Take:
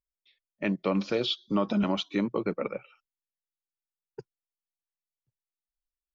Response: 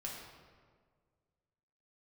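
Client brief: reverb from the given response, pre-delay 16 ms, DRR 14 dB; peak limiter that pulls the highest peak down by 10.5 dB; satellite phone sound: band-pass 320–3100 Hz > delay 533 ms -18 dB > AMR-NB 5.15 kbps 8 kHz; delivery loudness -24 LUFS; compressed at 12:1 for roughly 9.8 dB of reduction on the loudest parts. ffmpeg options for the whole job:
-filter_complex "[0:a]acompressor=threshold=0.0251:ratio=12,alimiter=level_in=2.37:limit=0.0631:level=0:latency=1,volume=0.422,asplit=2[s0][s1];[1:a]atrim=start_sample=2205,adelay=16[s2];[s1][s2]afir=irnorm=-1:irlink=0,volume=0.211[s3];[s0][s3]amix=inputs=2:normalize=0,highpass=320,lowpass=3100,aecho=1:1:533:0.126,volume=15.8" -ar 8000 -c:a libopencore_amrnb -b:a 5150

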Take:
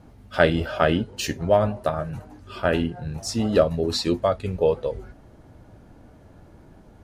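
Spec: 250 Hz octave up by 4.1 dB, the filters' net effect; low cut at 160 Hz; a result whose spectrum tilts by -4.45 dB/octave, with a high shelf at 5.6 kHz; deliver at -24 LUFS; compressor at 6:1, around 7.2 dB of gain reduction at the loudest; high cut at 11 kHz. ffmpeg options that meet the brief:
-af "highpass=160,lowpass=11000,equalizer=f=250:t=o:g=6.5,highshelf=f=5600:g=8,acompressor=threshold=0.112:ratio=6,volume=1.26"

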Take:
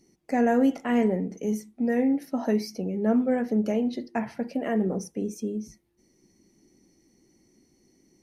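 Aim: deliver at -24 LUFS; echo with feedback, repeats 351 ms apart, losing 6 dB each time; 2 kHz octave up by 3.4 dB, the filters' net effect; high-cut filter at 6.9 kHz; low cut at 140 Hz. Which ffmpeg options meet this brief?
-af "highpass=140,lowpass=6900,equalizer=f=2000:t=o:g=4,aecho=1:1:351|702|1053|1404|1755|2106:0.501|0.251|0.125|0.0626|0.0313|0.0157,volume=1.19"

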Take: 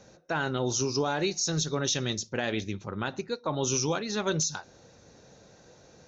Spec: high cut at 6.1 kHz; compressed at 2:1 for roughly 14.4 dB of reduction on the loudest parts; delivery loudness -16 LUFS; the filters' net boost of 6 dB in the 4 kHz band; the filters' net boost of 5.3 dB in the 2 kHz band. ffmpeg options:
-af "lowpass=6100,equalizer=f=2000:t=o:g=6,equalizer=f=4000:t=o:g=7,acompressor=threshold=0.00355:ratio=2,volume=16.8"

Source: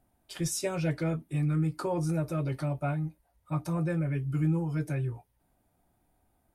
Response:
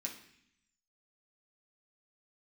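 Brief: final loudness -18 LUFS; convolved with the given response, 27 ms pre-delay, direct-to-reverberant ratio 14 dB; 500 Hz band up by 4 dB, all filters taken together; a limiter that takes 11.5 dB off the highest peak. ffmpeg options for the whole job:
-filter_complex "[0:a]equalizer=f=500:t=o:g=5,alimiter=level_in=1.58:limit=0.0631:level=0:latency=1,volume=0.631,asplit=2[s0][s1];[1:a]atrim=start_sample=2205,adelay=27[s2];[s1][s2]afir=irnorm=-1:irlink=0,volume=0.237[s3];[s0][s3]amix=inputs=2:normalize=0,volume=7.5"

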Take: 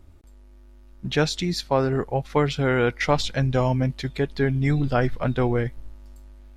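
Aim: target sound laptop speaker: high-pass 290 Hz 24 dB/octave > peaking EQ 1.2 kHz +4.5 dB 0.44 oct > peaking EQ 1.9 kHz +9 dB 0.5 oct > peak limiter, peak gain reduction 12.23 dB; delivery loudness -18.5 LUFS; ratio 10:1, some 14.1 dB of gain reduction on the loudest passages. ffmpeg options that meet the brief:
-af "acompressor=threshold=0.0316:ratio=10,highpass=f=290:w=0.5412,highpass=f=290:w=1.3066,equalizer=f=1200:t=o:w=0.44:g=4.5,equalizer=f=1900:t=o:w=0.5:g=9,volume=11.9,alimiter=limit=0.447:level=0:latency=1"

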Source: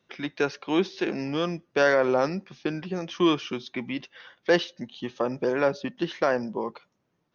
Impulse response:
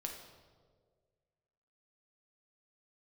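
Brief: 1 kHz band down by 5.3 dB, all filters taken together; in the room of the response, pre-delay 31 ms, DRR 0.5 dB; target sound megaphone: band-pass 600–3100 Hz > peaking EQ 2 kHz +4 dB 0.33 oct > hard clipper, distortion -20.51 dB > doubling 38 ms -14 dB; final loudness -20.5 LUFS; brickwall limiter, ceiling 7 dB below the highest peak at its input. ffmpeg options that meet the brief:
-filter_complex "[0:a]equalizer=f=1000:t=o:g=-6.5,alimiter=limit=0.133:level=0:latency=1,asplit=2[s0][s1];[1:a]atrim=start_sample=2205,adelay=31[s2];[s1][s2]afir=irnorm=-1:irlink=0,volume=1.12[s3];[s0][s3]amix=inputs=2:normalize=0,highpass=600,lowpass=3100,equalizer=f=2000:t=o:w=0.33:g=4,asoftclip=type=hard:threshold=0.0891,asplit=2[s4][s5];[s5]adelay=38,volume=0.2[s6];[s4][s6]amix=inputs=2:normalize=0,volume=4.22"

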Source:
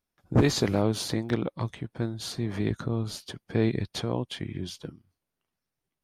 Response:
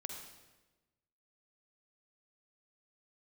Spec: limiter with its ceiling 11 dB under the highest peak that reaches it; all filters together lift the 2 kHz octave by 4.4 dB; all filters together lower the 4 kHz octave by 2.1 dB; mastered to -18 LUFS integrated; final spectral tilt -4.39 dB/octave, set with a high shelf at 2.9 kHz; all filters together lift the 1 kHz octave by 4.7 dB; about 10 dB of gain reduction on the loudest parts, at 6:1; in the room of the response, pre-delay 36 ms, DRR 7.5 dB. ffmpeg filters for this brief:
-filter_complex "[0:a]equalizer=f=1000:t=o:g=5,equalizer=f=2000:t=o:g=3.5,highshelf=f=2900:g=6,equalizer=f=4000:t=o:g=-8.5,acompressor=threshold=0.0501:ratio=6,alimiter=level_in=1.12:limit=0.0631:level=0:latency=1,volume=0.891,asplit=2[s0][s1];[1:a]atrim=start_sample=2205,adelay=36[s2];[s1][s2]afir=irnorm=-1:irlink=0,volume=0.531[s3];[s0][s3]amix=inputs=2:normalize=0,volume=8.41"

